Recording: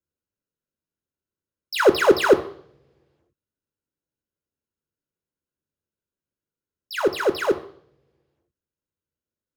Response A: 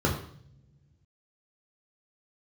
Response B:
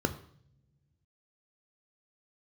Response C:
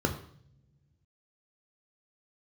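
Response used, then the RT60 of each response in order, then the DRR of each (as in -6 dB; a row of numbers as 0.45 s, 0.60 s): B; no single decay rate, no single decay rate, no single decay rate; -2.0 dB, 8.0 dB, 3.5 dB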